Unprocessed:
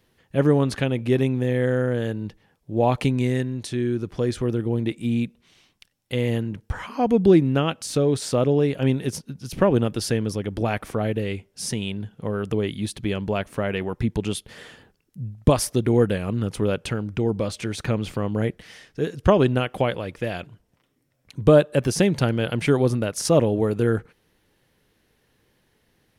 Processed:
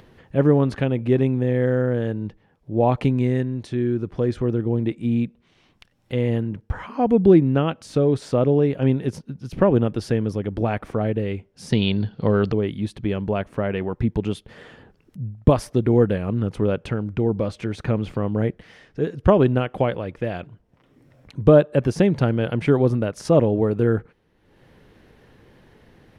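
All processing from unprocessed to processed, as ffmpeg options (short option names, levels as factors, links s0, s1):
-filter_complex "[0:a]asettb=1/sr,asplit=3[s0][s1][s2];[s0]atrim=end=11.724[s3];[s1]atrim=start=11.72:end=12.52,asetpts=PTS-STARTPTS,afade=t=in:d=0.004:c=qsin,afade=t=out:st=0.796:d=0.004:c=qsin,acontrast=64,lowpass=f=4400:t=q:w=15[s4];[s2]atrim=start=12.516[s5];[s3][s4]acrossfade=d=0.004:c1=hsin:c2=qsin[s6];[s6][s5]acrossfade=d=0.004:c1=qsin:c2=hsin,lowpass=f=1400:p=1,acompressor=mode=upward:threshold=0.00891:ratio=2.5,volume=1.26"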